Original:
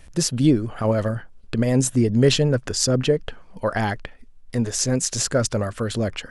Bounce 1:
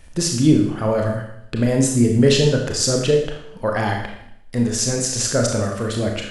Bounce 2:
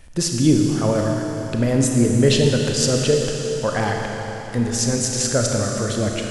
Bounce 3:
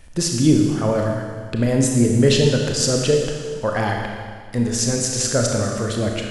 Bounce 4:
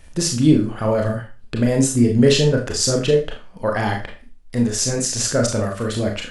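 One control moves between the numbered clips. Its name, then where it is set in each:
four-comb reverb, RT60: 0.71, 3.9, 1.8, 0.32 seconds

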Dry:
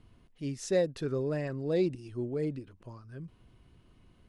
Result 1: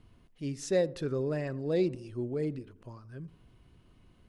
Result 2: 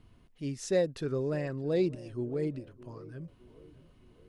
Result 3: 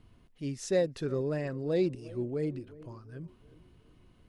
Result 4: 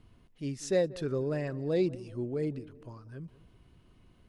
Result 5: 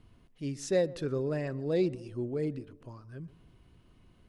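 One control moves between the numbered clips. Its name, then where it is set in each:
tape delay, delay time: 84, 612, 362, 189, 129 milliseconds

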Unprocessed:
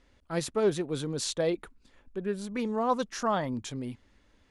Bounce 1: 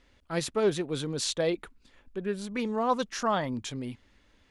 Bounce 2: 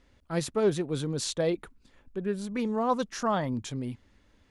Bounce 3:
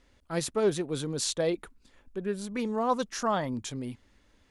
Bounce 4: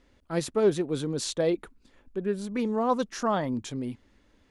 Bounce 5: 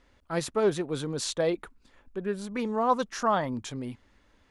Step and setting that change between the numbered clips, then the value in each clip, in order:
parametric band, centre frequency: 2,900, 120, 11,000, 300, 1,100 Hertz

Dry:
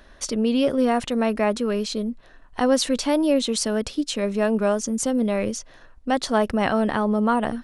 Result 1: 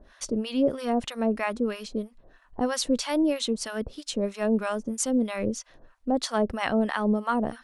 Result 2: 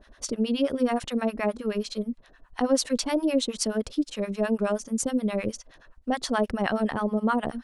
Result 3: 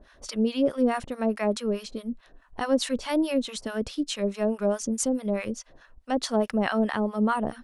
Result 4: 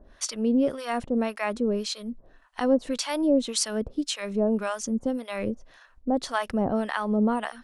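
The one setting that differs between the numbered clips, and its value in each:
two-band tremolo in antiphase, speed: 3.1, 9.5, 4.7, 1.8 Hertz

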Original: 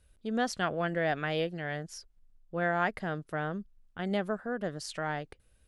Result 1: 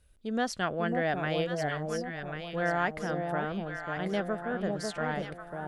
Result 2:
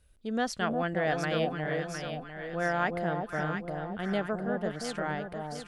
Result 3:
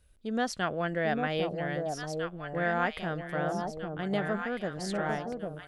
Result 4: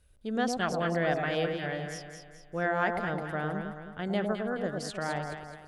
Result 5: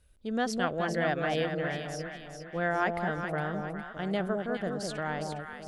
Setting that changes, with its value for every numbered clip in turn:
delay that swaps between a low-pass and a high-pass, delay time: 545, 354, 800, 106, 205 milliseconds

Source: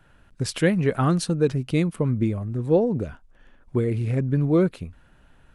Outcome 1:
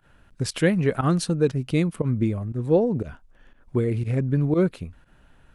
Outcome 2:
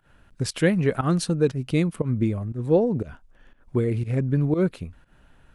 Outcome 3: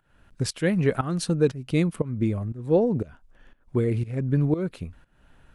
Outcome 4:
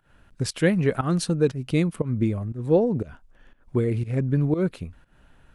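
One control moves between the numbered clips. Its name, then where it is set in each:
fake sidechain pumping, release: 72, 130, 382, 192 milliseconds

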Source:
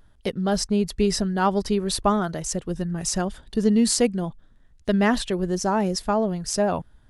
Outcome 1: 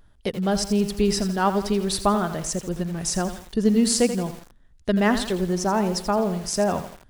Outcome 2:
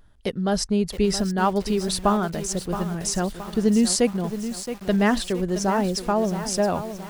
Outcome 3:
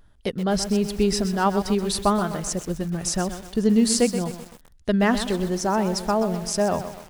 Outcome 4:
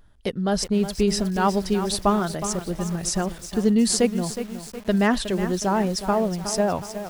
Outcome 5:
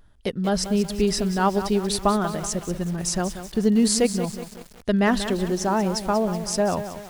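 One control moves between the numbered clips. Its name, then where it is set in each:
feedback echo at a low word length, delay time: 84, 671, 127, 366, 187 milliseconds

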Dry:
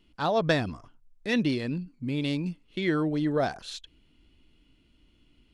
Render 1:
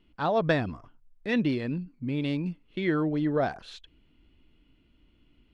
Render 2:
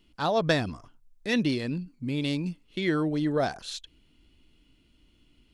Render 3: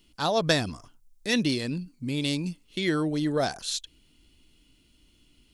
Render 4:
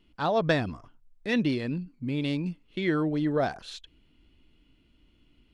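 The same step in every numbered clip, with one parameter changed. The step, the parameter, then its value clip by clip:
bass and treble, treble: −13, +4, +15, −5 decibels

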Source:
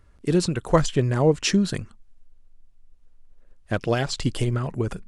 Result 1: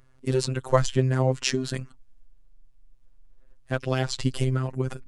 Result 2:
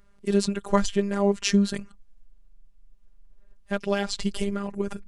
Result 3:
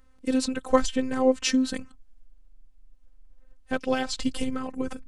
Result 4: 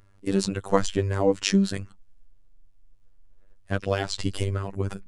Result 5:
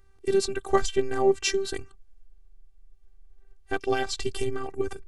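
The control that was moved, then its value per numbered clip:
phases set to zero, frequency: 130, 200, 260, 98, 390 Hertz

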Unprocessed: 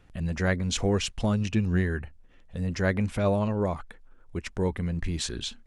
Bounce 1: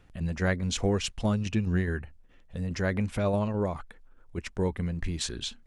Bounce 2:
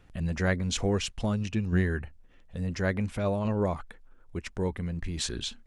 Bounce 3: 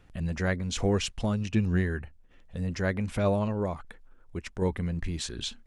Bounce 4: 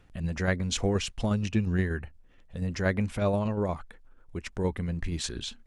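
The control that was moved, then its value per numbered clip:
shaped tremolo, speed: 4.8, 0.58, 1.3, 8.4 Hertz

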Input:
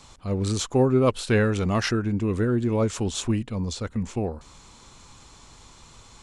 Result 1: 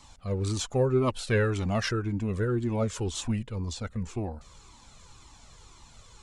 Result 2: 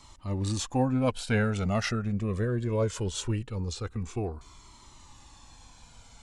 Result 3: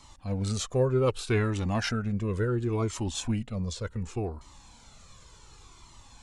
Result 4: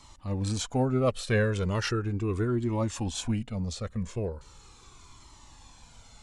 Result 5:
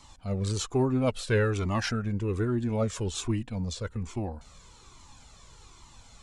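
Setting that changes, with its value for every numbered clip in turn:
flanger whose copies keep moving one way, speed: 1.9, 0.21, 0.68, 0.38, 1.2 Hertz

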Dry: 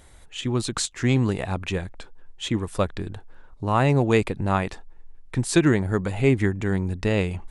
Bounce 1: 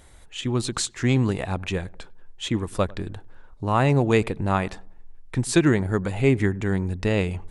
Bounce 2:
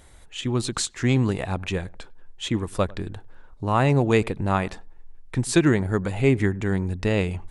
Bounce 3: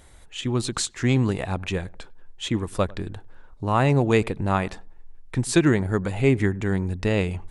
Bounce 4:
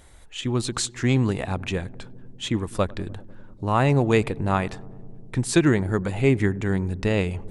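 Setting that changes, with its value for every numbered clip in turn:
feedback echo with a low-pass in the loop, feedback: 41, 16, 25, 89%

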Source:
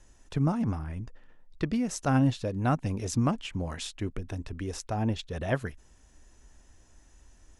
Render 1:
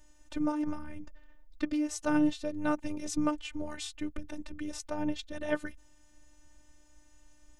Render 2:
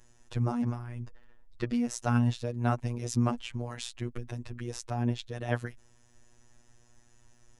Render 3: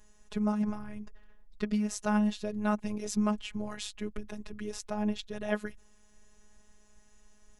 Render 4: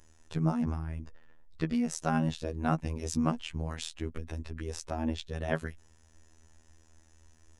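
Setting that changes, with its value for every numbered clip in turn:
phases set to zero, frequency: 300, 120, 210, 80 Hertz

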